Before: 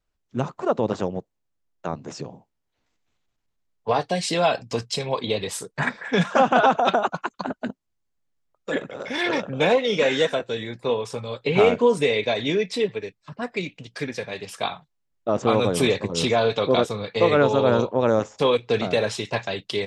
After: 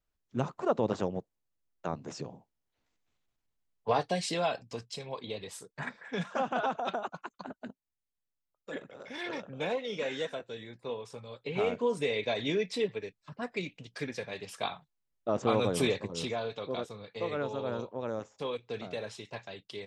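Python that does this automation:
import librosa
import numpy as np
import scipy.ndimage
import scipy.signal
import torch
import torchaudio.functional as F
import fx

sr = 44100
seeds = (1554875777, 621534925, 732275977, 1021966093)

y = fx.gain(x, sr, db=fx.line((4.08, -6.0), (4.8, -14.0), (11.52, -14.0), (12.41, -7.5), (15.82, -7.5), (16.51, -16.0)))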